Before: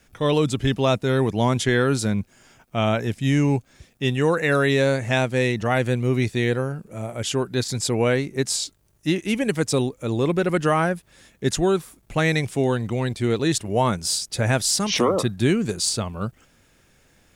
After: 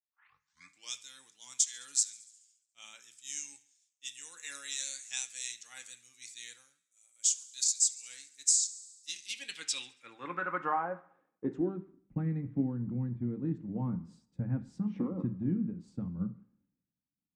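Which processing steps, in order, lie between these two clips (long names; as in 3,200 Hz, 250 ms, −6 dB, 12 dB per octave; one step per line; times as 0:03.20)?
turntable start at the beginning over 0.97 s
thirty-one-band graphic EQ 400 Hz −8 dB, 630 Hz −10 dB, 8,000 Hz +6 dB
delay with a high-pass on its return 70 ms, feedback 80%, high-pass 3,500 Hz, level −20.5 dB
dynamic equaliser 6,400 Hz, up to +6 dB, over −38 dBFS, Q 1.7
band-pass filter sweep 6,800 Hz → 210 Hz, 0:08.97–0:11.98
downward compressor 5 to 1, threshold −34 dBFS, peak gain reduction 15 dB
on a send at −6 dB: convolution reverb, pre-delay 3 ms
on the sum: multiband upward and downward expander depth 100%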